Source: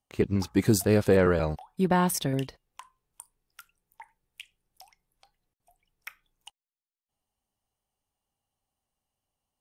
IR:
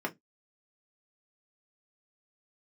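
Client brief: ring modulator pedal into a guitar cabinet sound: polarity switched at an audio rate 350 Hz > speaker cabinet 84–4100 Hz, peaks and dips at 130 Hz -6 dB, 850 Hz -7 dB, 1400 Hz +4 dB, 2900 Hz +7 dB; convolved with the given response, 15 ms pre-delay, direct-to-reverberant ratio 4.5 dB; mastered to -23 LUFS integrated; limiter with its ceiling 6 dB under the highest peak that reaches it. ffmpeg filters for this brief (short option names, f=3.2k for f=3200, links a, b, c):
-filter_complex "[0:a]alimiter=limit=-17dB:level=0:latency=1,asplit=2[a][b];[1:a]atrim=start_sample=2205,adelay=15[c];[b][c]afir=irnorm=-1:irlink=0,volume=-10dB[d];[a][d]amix=inputs=2:normalize=0,aeval=exprs='val(0)*sgn(sin(2*PI*350*n/s))':c=same,highpass=84,equalizer=f=130:t=q:w=4:g=-6,equalizer=f=850:t=q:w=4:g=-7,equalizer=f=1.4k:t=q:w=4:g=4,equalizer=f=2.9k:t=q:w=4:g=7,lowpass=f=4.1k:w=0.5412,lowpass=f=4.1k:w=1.3066,volume=3.5dB"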